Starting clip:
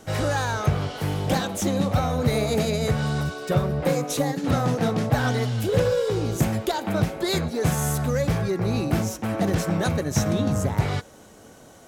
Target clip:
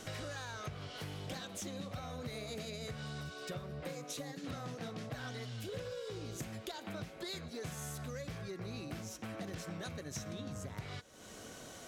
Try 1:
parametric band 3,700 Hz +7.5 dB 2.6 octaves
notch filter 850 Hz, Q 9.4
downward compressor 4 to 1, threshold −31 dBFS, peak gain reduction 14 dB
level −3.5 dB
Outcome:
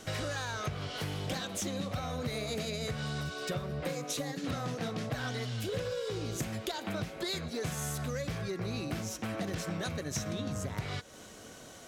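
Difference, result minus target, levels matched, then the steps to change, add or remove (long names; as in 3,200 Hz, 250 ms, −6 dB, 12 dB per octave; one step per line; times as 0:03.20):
downward compressor: peak gain reduction −7.5 dB
change: downward compressor 4 to 1, threshold −41 dBFS, peak gain reduction 21.5 dB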